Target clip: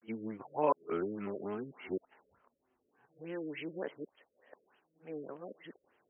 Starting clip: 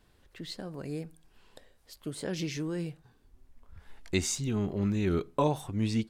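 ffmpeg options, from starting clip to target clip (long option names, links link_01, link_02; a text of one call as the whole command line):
ffmpeg -i in.wav -af "areverse,highpass=430,lowpass=5100,afftfilt=real='re*lt(b*sr/1024,590*pow(3300/590,0.5+0.5*sin(2*PI*3.4*pts/sr)))':imag='im*lt(b*sr/1024,590*pow(3300/590,0.5+0.5*sin(2*PI*3.4*pts/sr)))':win_size=1024:overlap=0.75" out.wav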